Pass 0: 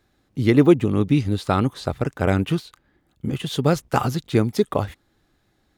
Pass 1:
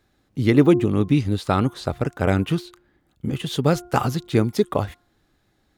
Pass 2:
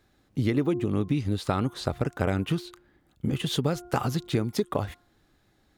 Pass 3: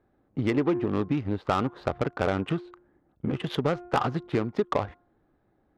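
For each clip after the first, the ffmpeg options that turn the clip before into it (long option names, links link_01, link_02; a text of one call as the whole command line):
ffmpeg -i in.wav -af "bandreject=frequency=353.8:width_type=h:width=4,bandreject=frequency=707.6:width_type=h:width=4,bandreject=frequency=1061.4:width_type=h:width=4,bandreject=frequency=1415.2:width_type=h:width=4" out.wav
ffmpeg -i in.wav -af "acompressor=threshold=-22dB:ratio=6" out.wav
ffmpeg -i in.wav -filter_complex "[0:a]adynamicsmooth=sensitivity=2:basefreq=740,asplit=2[link_01][link_02];[link_02]highpass=frequency=720:poles=1,volume=13dB,asoftclip=type=tanh:threshold=-11dB[link_03];[link_01][link_03]amix=inputs=2:normalize=0,lowpass=frequency=7400:poles=1,volume=-6dB" out.wav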